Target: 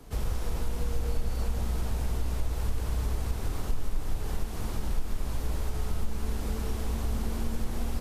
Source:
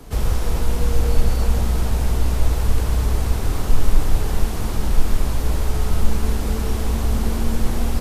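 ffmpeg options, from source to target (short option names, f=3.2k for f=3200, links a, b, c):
-af "acompressor=threshold=-15dB:ratio=2.5,volume=-9dB"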